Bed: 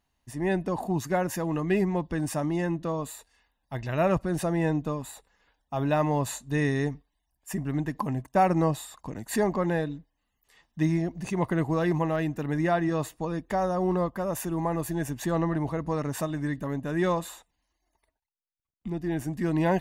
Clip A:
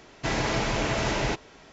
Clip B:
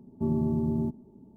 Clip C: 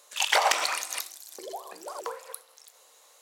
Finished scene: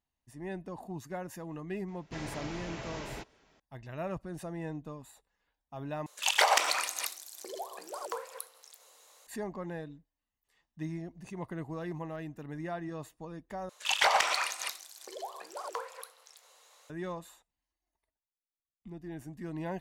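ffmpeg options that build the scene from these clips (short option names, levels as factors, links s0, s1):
-filter_complex "[3:a]asplit=2[s0][s1];[0:a]volume=0.224[s2];[s1]asplit=2[s3][s4];[s4]highpass=f=720:p=1,volume=3.55,asoftclip=type=tanh:threshold=0.668[s5];[s3][s5]amix=inputs=2:normalize=0,lowpass=f=4400:p=1,volume=0.501[s6];[s2]asplit=3[s7][s8][s9];[s7]atrim=end=6.064[s10];[s0]atrim=end=3.21,asetpts=PTS-STARTPTS,volume=0.794[s11];[s8]atrim=start=9.266:end=13.694[s12];[s6]atrim=end=3.21,asetpts=PTS-STARTPTS,volume=0.473[s13];[s9]atrim=start=16.896[s14];[1:a]atrim=end=1.72,asetpts=PTS-STARTPTS,volume=0.178,afade=t=in:d=0.004:c=hsin,afade=t=out:st=1.716:d=0.004:c=hsin,adelay=1880[s15];[s10][s11]acrossfade=d=0.004:c1=hsin:c2=hsin[s16];[s16][s12]acrossfade=d=0.004:c1=hsin:c2=hsin[s17];[s17][s13]acrossfade=d=0.004:c1=hsin:c2=hsin[s18];[s18][s14]acrossfade=d=0.004:c1=hsin:c2=hsin[s19];[s19][s15]amix=inputs=2:normalize=0"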